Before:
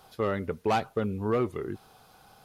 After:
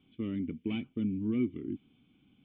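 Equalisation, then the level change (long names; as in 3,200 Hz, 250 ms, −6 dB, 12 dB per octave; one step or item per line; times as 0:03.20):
formant resonators in series i
low-shelf EQ 74 Hz −8.5 dB
flat-topped bell 600 Hz −9.5 dB 1.3 octaves
+8.0 dB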